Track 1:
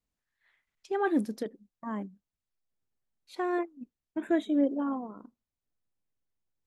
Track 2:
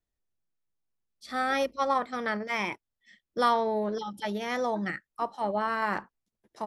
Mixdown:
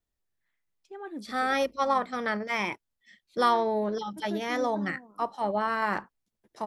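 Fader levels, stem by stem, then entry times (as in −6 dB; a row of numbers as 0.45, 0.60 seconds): −12.5, +1.0 decibels; 0.00, 0.00 seconds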